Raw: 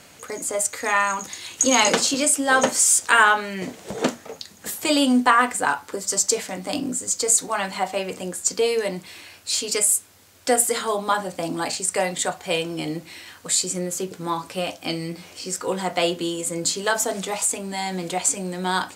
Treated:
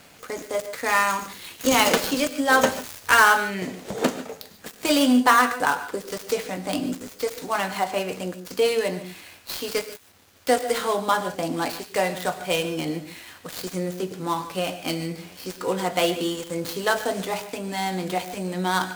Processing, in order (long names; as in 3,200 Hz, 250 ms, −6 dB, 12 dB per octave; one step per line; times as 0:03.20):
gap after every zero crossing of 0.059 ms
0:02.68–0:03.21: parametric band 92 Hz +14.5 dB 0.35 octaves
reverb whose tail is shaped and stops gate 170 ms rising, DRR 11.5 dB